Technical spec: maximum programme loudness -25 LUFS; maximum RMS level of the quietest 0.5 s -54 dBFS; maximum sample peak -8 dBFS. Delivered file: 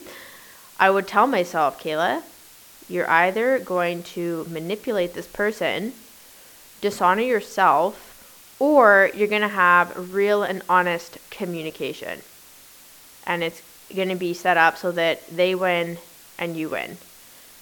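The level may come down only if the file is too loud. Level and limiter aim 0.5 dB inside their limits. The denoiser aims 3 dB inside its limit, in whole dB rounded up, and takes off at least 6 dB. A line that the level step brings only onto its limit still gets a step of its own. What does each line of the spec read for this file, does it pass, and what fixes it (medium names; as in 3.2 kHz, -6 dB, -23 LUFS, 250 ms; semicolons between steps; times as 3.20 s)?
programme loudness -21.0 LUFS: fail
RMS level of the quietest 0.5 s -48 dBFS: fail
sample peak -2.0 dBFS: fail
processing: noise reduction 6 dB, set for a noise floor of -48 dBFS; trim -4.5 dB; peak limiter -8.5 dBFS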